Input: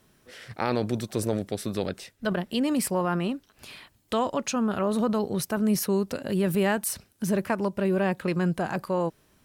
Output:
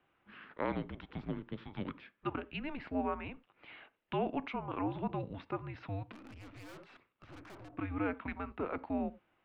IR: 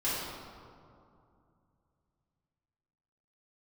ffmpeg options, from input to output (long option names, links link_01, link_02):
-filter_complex "[0:a]highpass=frequency=480:width_type=q:width=0.5412,highpass=frequency=480:width_type=q:width=1.307,lowpass=frequency=3200:width_type=q:width=0.5176,lowpass=frequency=3200:width_type=q:width=0.7071,lowpass=frequency=3200:width_type=q:width=1.932,afreqshift=-290,asplit=2[link_01][link_02];[link_02]highshelf=frequency=2000:gain=-11[link_03];[1:a]atrim=start_sample=2205,atrim=end_sample=4410[link_04];[link_03][link_04]afir=irnorm=-1:irlink=0,volume=-20dB[link_05];[link_01][link_05]amix=inputs=2:normalize=0,asettb=1/sr,asplit=3[link_06][link_07][link_08];[link_06]atrim=end=6.124[link_09];[link_07]atrim=start=6.12:end=7.77,asetpts=PTS-STARTPTS,afade=type=in:duration=0.004:curve=qsin,afade=type=out:start_time=1.646:duration=0.004:curve=qsin,aeval=exprs='(tanh(141*val(0)+0.35)-tanh(0.35))/141':channel_layout=same[link_10];[link_08]atrim=start=7.766[link_11];[link_09][link_10]acrossfade=duration=0.004:curve1=hsin:curve2=qsin[link_12];[link_12][link_11]acrossfade=duration=0.004:curve1=qsin:curve2=hsin,volume=-6.5dB"